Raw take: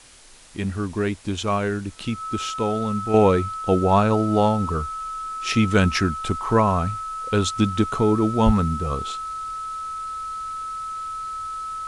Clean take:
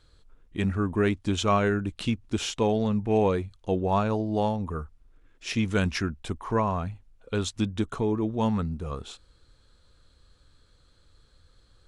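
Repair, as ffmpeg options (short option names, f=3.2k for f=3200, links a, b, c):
-filter_complex "[0:a]bandreject=f=1.3k:w=30,asplit=3[a][b][c];[a]afade=t=out:st=8.45:d=0.02[d];[b]highpass=f=140:w=0.5412,highpass=f=140:w=1.3066,afade=t=in:st=8.45:d=0.02,afade=t=out:st=8.57:d=0.02[e];[c]afade=t=in:st=8.57:d=0.02[f];[d][e][f]amix=inputs=3:normalize=0,afwtdn=0.0045,asetnsamples=n=441:p=0,asendcmd='3.14 volume volume -7dB',volume=0dB"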